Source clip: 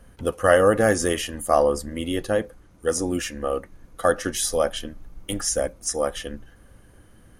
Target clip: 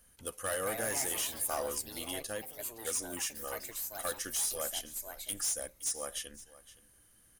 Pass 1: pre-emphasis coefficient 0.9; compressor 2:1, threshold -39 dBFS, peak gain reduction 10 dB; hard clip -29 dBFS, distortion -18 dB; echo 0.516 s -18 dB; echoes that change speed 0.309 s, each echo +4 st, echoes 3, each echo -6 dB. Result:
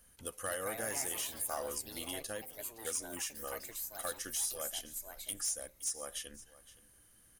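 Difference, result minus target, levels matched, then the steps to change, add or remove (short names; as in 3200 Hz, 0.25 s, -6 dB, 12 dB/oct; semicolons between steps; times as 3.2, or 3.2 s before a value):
compressor: peak gain reduction +5 dB
change: compressor 2:1, threshold -28.5 dBFS, peak gain reduction 5 dB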